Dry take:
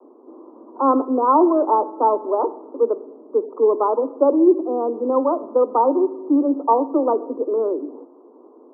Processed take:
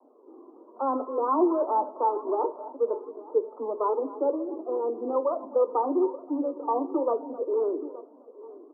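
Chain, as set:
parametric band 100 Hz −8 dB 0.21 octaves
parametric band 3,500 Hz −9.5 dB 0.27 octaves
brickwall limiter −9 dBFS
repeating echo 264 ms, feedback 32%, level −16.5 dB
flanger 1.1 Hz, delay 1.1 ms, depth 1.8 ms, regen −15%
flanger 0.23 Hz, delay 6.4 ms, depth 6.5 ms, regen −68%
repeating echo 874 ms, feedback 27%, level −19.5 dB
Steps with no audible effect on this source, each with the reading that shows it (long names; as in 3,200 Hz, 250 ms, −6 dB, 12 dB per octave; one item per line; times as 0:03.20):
parametric band 100 Hz: nothing at its input below 210 Hz
parametric band 3,500 Hz: nothing at its input above 1,400 Hz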